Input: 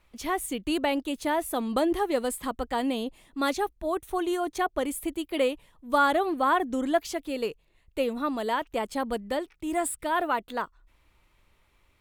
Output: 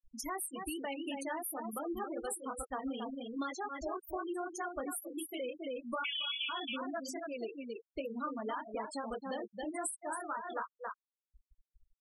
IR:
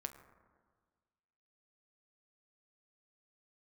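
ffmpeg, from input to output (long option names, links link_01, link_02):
-filter_complex "[0:a]flanger=delay=18:depth=4.6:speed=2.6,alimiter=limit=-22dB:level=0:latency=1:release=15,adynamicequalizer=threshold=0.00398:dfrequency=1300:dqfactor=1.9:tfrequency=1300:tqfactor=1.9:attack=5:release=100:ratio=0.375:range=3:mode=boostabove:tftype=bell,asettb=1/sr,asplit=3[link_01][link_02][link_03];[link_01]atrim=end=6.044[link_04];[link_02]atrim=start=6.04:end=6.49,asetpts=PTS-STARTPTS,afade=type=in:duration=0.004:curve=qsin,afade=type=out:start_time=0.446:duration=0.004:curve=qsin,lowpass=frequency=3100:width_type=q:width=0.5098,lowpass=frequency=3100:width_type=q:width=0.6013,lowpass=frequency=3100:width_type=q:width=0.9,lowpass=frequency=3100:width_type=q:width=2.563,afreqshift=-3700[link_05];[link_03]atrim=start=6.486[link_06];[link_04][link_05]acrossfade=duration=0.004:curve1=hsin:curve2=qsin[link_07];[link_07][link_06]acrossfade=duration=0.004:curve1=qsin:curve2=hsin,aemphasis=mode=production:type=75fm,asplit=2[link_08][link_09];[link_09]aecho=0:1:272:0.447[link_10];[link_08][link_10]amix=inputs=2:normalize=0,acompressor=threshold=-34dB:ratio=8,flanger=delay=1.2:depth=4.6:regen=-63:speed=1.1:shape=triangular,acompressor=mode=upward:threshold=-48dB:ratio=2.5,afftfilt=real='re*gte(hypot(re,im),0.0141)':imag='im*gte(hypot(re,im),0.0141)':win_size=1024:overlap=0.75,volume=3.5dB"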